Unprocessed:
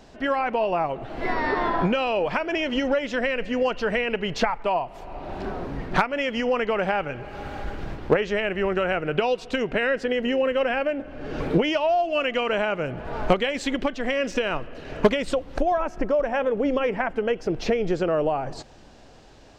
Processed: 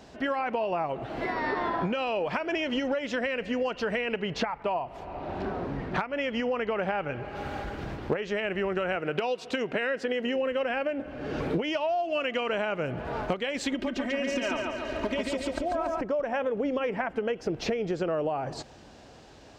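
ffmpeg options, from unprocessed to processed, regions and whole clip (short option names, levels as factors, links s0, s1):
-filter_complex "[0:a]asettb=1/sr,asplit=3[s0][s1][s2];[s0]atrim=end=4.224[s3];[s1]atrim=start=4.22:end=7.36,asetpts=PTS-STARTPTS,afade=t=in:d=0.004:c=qsin,afade=t=out:st=3.136:d=0.004:c=qsin,lowpass=f=3700:p=1,aeval=exprs='val(0)+0.00251*(sin(2*PI*50*n/s)+sin(2*PI*2*50*n/s)/2+sin(2*PI*3*50*n/s)/3+sin(2*PI*4*50*n/s)/4+sin(2*PI*5*50*n/s)/5)':c=same[s4];[s2]atrim=start=7.356[s5];[s3][s4]acrossfade=d=0.004:c1=hsin:c2=qsin[s6];[s6][s5]acrossfade=d=0.004:c1=qsin:c2=hsin,asettb=1/sr,asplit=3[s7][s8][s9];[s7]atrim=end=8.954[s10];[s8]atrim=start=8.95:end=10.36,asetpts=PTS-STARTPTS,afade=t=in:d=0.004:c=qsin,afade=t=out:st=1.406:d=0.004:c=qsin,highpass=f=180:p=1,asoftclip=type=hard:threshold=0.237[s11];[s9]atrim=start=10.356[s12];[s10][s11]acrossfade=d=0.004:c1=hsin:c2=qsin[s13];[s13][s12]acrossfade=d=0.004:c1=qsin:c2=hsin,asettb=1/sr,asplit=3[s14][s15][s16];[s14]atrim=end=13.724[s17];[s15]atrim=start=13.72:end=16.01,asetpts=PTS-STARTPTS,afade=t=in:d=0.004:c=qsin,afade=t=out:st=2.286:d=0.004:c=qsin,acompressor=threshold=0.0708:ratio=6:attack=3.2:release=140:knee=1:detection=peak,aecho=1:1:3.2:0.77,atrim=end_sample=100989,aecho=1:1:141|282|423|564|705|846|987:0.708|0.361|0.184|0.0939|0.0479|0.0244|0.0125,atrim=end_sample=100989[s18];[s16]atrim=start=16.006[s19];[s17][s18]acrossfade=d=0.004:c1=hsin:c2=qsin[s20];[s20][s19]acrossfade=d=0.004:c1=qsin:c2=hsin,acompressor=threshold=0.0501:ratio=4,highpass=58"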